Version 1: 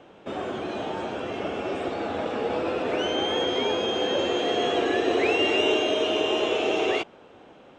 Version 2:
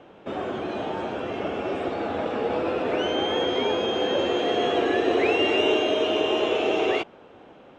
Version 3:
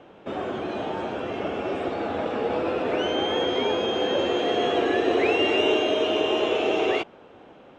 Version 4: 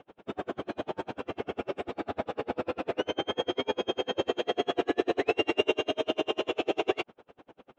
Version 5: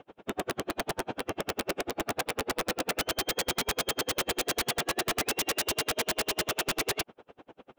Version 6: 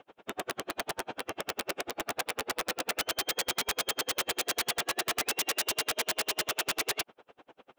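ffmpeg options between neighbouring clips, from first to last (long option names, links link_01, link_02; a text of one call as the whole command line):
ffmpeg -i in.wav -af "highshelf=frequency=5400:gain=-10,volume=1.5dB" out.wav
ffmpeg -i in.wav -af anull out.wav
ffmpeg -i in.wav -af "aeval=exprs='val(0)*pow(10,-39*(0.5-0.5*cos(2*PI*10*n/s))/20)':channel_layout=same" out.wav
ffmpeg -i in.wav -af "aeval=exprs='(mod(15.8*val(0)+1,2)-1)/15.8':channel_layout=same,volume=2dB" out.wav
ffmpeg -i in.wav -af "lowshelf=frequency=430:gain=-10.5" out.wav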